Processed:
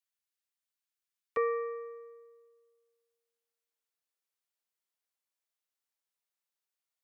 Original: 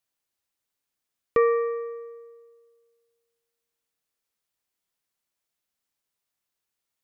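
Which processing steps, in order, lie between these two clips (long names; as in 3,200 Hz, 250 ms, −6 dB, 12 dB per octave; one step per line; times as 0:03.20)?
high-pass filter 1,200 Hz 12 dB per octave, from 0:01.37 430 Hz
level −7.5 dB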